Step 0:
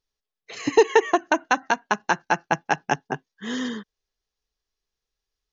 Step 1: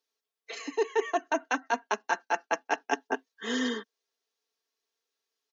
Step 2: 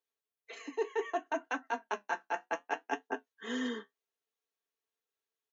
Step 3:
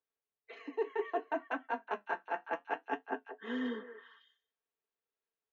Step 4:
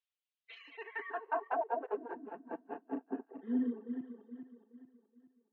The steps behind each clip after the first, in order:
steep high-pass 260 Hz 48 dB/oct; comb 4.4 ms, depth 57%; reverse; compressor 12:1, threshold -24 dBFS, peak gain reduction 18 dB; reverse
bell 5000 Hz -10 dB 0.66 oct; flange 0.65 Hz, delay 9.8 ms, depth 3.9 ms, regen -54%; gain -2 dB
air absorption 320 m; on a send: delay with a stepping band-pass 0.185 s, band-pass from 530 Hz, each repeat 1.4 oct, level -7 dB
regenerating reverse delay 0.211 s, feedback 64%, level -5 dB; band-pass sweep 3100 Hz -> 250 Hz, 0.66–2.34; reverb removal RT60 1.3 s; gain +6.5 dB

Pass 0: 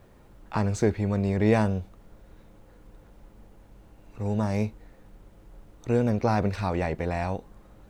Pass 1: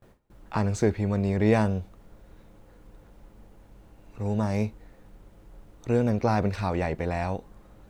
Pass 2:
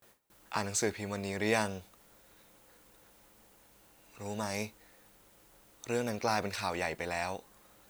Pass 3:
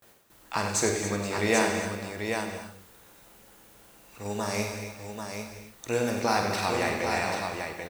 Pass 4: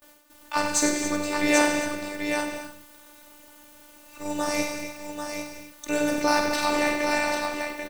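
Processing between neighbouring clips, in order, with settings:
gate with hold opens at -45 dBFS
tilt +4 dB/oct; gain -3.5 dB
on a send: tapped delay 49/95/281/475/789 ms -7.5/-8.5/-14/-19/-5.5 dB; on the sum: non-linear reverb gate 0.3 s flat, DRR 5.5 dB; gain +4 dB
robotiser 295 Hz; gain +6 dB

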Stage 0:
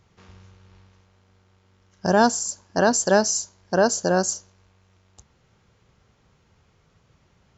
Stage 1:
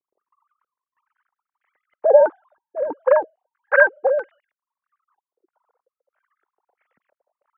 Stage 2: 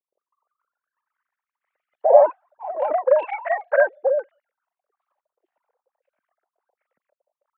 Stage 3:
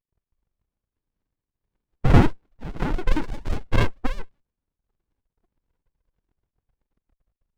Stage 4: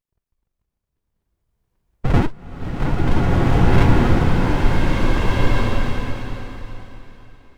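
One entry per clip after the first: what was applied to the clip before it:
sine-wave speech; transient shaper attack +10 dB, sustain -2 dB; stepped low-pass 3.1 Hz 380–2000 Hz; gain -7 dB
bell 570 Hz +9.5 dB 0.79 oct; echoes that change speed 0.323 s, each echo +3 st, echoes 3, each echo -6 dB; gain -10 dB
running maximum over 65 samples; gain +4.5 dB
in parallel at -1 dB: compressor, threshold -22 dBFS, peak gain reduction 14 dB; on the sum: bloom reverb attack 1.8 s, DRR -8.5 dB; gain -3.5 dB

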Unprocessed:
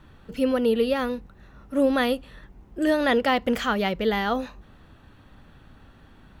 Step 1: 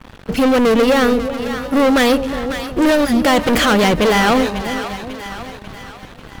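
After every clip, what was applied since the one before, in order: spectral gain 3.05–3.25, 240–4700 Hz -23 dB; sample leveller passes 5; split-band echo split 730 Hz, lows 0.366 s, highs 0.544 s, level -9.5 dB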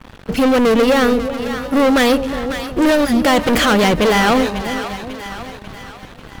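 nothing audible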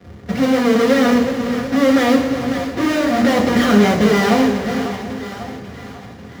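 half-waves squared off; reverb RT60 0.85 s, pre-delay 3 ms, DRR -1 dB; gain -15.5 dB

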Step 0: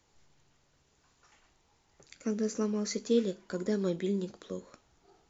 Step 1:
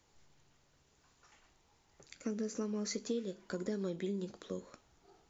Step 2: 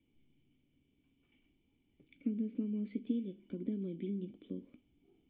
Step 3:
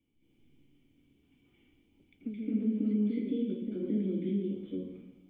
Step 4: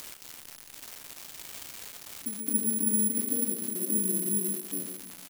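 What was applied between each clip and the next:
compressor 5:1, threshold -33 dBFS, peak gain reduction 11 dB; gain -1 dB
vocal tract filter i; gain +8 dB
reverb RT60 0.90 s, pre-delay 0.213 s, DRR -9 dB; gain -3 dB
switching spikes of -32.5 dBFS; echo 0.132 s -10.5 dB; careless resampling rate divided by 4×, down none, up zero stuff; gain -3.5 dB

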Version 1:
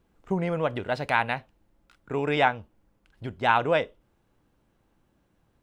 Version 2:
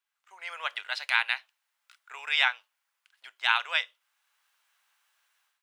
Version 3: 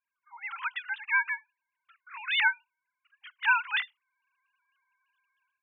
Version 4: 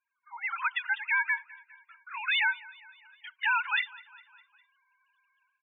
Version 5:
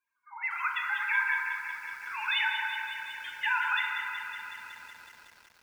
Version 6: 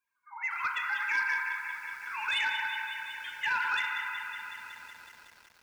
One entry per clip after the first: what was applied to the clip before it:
Bessel high-pass 1800 Hz, order 4; dynamic EQ 4000 Hz, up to +6 dB, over -46 dBFS, Q 0.9; AGC gain up to 15.5 dB; gain -6 dB
sine-wave speech; bell 570 Hz -2.5 dB
limiter -23.5 dBFS, peak gain reduction 10.5 dB; loudest bins only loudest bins 32; feedback echo 0.203 s, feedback 58%, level -22 dB; gain +5 dB
FDN reverb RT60 1.8 s, high-frequency decay 0.35×, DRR 0.5 dB; compressor 1.5:1, threshold -32 dBFS, peak gain reduction 5 dB; lo-fi delay 0.185 s, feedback 80%, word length 9-bit, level -8.5 dB
soft clip -21.5 dBFS, distortion -20 dB

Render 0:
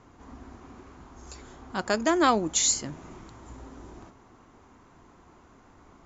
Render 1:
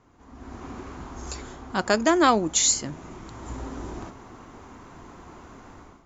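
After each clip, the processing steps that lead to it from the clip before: AGC gain up to 15.5 dB; gain -5.5 dB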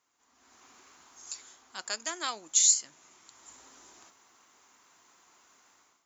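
differentiator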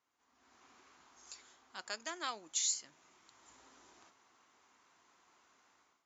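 air absorption 99 m; gain -4.5 dB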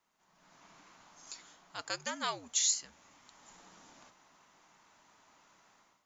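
frequency shift -79 Hz; gain +4.5 dB

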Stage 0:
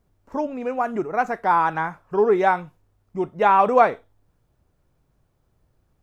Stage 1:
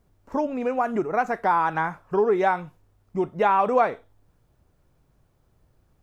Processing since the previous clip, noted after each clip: compressor 2:1, threshold -24 dBFS, peak gain reduction 8 dB; gain +2.5 dB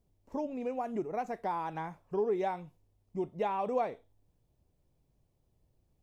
bell 1400 Hz -12.5 dB 0.85 oct; gain -9 dB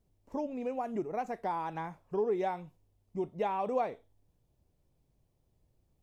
wow and flutter 23 cents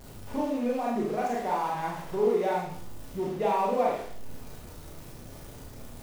zero-crossing step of -43 dBFS; Schroeder reverb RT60 0.56 s, combs from 26 ms, DRR -4 dB

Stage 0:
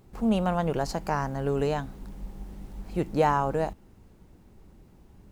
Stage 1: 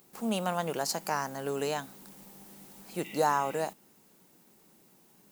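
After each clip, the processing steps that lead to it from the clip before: RIAA curve recording; spectral repair 3.07–3.61, 1900–3800 Hz; resonant low shelf 110 Hz -12 dB, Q 1.5; gain -2.5 dB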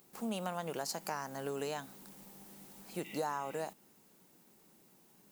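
compressor 3:1, threshold -32 dBFS, peak gain reduction 8 dB; gain -3 dB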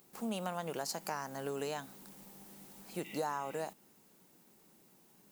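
nothing audible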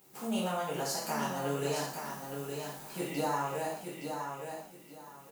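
feedback echo 0.868 s, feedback 23%, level -6 dB; non-linear reverb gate 0.19 s falling, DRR -7.5 dB; gain -3 dB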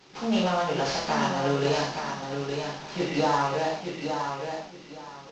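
CVSD 32 kbps; gain +8.5 dB

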